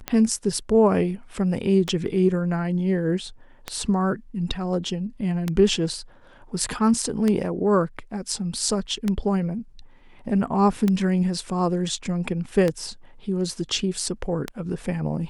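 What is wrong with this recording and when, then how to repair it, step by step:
scratch tick 33 1/3 rpm −10 dBFS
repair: click removal

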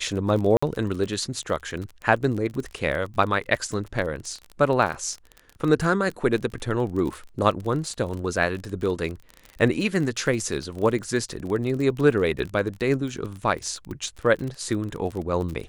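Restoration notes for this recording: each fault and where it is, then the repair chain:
surface crackle 30 per second −29 dBFS
0:00.57–0:00.62: drop-out 55 ms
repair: click removal
repair the gap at 0:00.57, 55 ms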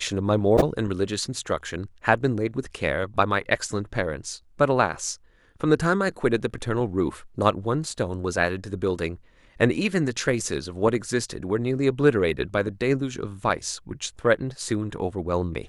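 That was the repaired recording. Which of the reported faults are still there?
none of them is left

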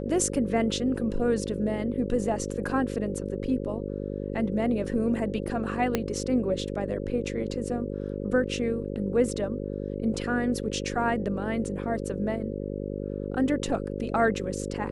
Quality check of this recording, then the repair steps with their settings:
mains buzz 50 Hz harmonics 11 −33 dBFS
0:05.95: click −10 dBFS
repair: click removal
hum removal 50 Hz, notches 11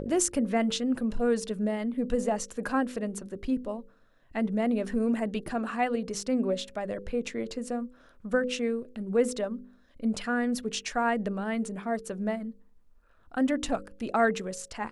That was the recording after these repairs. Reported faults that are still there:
0:05.95: click

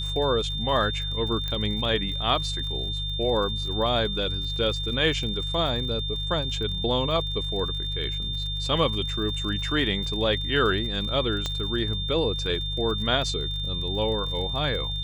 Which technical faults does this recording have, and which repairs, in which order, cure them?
surface crackle 52 per second −34 dBFS
mains hum 50 Hz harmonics 3 −32 dBFS
whistle 3,600 Hz −30 dBFS
0:01.48: click −16 dBFS
0:11.46: click −15 dBFS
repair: click removal
hum removal 50 Hz, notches 3
notch filter 3,600 Hz, Q 30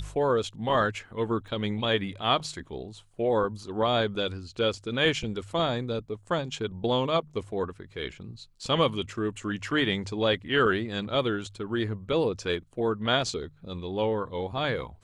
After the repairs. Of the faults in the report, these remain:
0:01.48: click
0:11.46: click

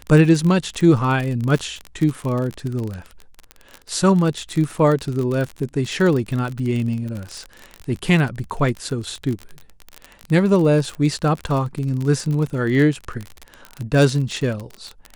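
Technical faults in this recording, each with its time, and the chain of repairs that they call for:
surface crackle 35 per second −23 dBFS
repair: click removal

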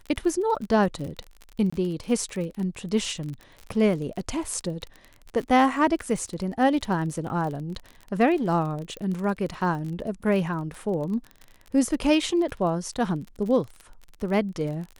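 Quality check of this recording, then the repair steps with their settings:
surface crackle 35 per second −32 dBFS
0:01.70–0:01.73: drop-out 25 ms
0:08.97: click −23 dBFS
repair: click removal
repair the gap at 0:01.70, 25 ms

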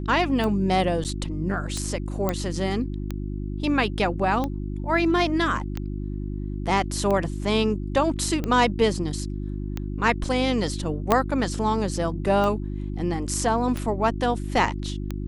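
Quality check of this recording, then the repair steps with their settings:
mains hum 50 Hz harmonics 7 −30 dBFS
scratch tick 45 rpm −15 dBFS
0:01.04–0:01.05: drop-out 8.5 ms
0:02.29: click −10 dBFS
0:11.12: click −5 dBFS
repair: click removal
hum removal 50 Hz, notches 7
repair the gap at 0:01.04, 8.5 ms

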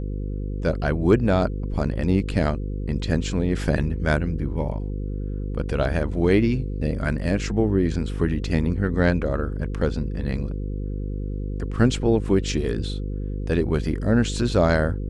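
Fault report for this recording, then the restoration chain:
mains buzz 50 Hz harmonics 10 −28 dBFS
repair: hum removal 50 Hz, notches 10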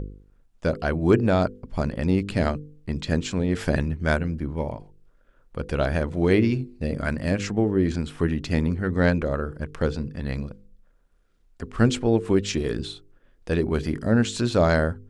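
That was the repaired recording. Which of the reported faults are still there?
none of them is left

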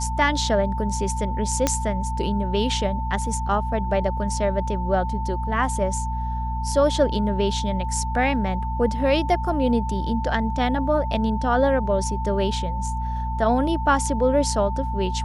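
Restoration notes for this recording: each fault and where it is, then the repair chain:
mains hum 60 Hz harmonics 4 −27 dBFS
whistle 890 Hz −29 dBFS
0:01.67: click −5 dBFS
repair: click removal
notch filter 890 Hz, Q 30
hum removal 60 Hz, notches 4

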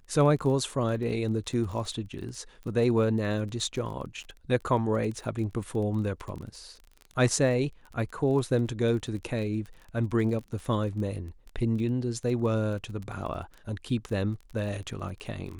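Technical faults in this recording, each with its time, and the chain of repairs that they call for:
surface crackle 20 per second −35 dBFS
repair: click removal

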